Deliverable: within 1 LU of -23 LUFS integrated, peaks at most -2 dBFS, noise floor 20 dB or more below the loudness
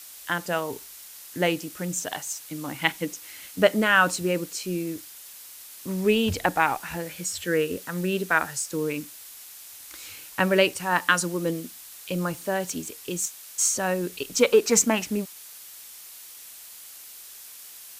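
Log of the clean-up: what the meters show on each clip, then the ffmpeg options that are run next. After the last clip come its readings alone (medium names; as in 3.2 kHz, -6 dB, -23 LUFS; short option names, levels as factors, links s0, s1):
noise floor -45 dBFS; noise floor target -46 dBFS; loudness -25.5 LUFS; peak level -5.0 dBFS; loudness target -23.0 LUFS
-> -af "afftdn=nr=6:nf=-45"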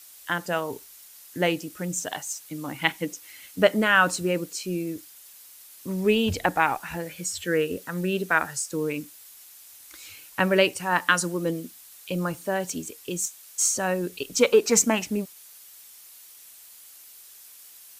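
noise floor -49 dBFS; loudness -25.5 LUFS; peak level -5.0 dBFS; loudness target -23.0 LUFS
-> -af "volume=1.33"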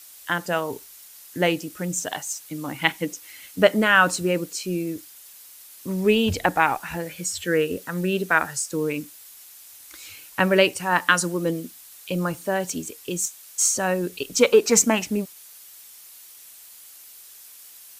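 loudness -23.0 LUFS; peak level -2.5 dBFS; noise floor -46 dBFS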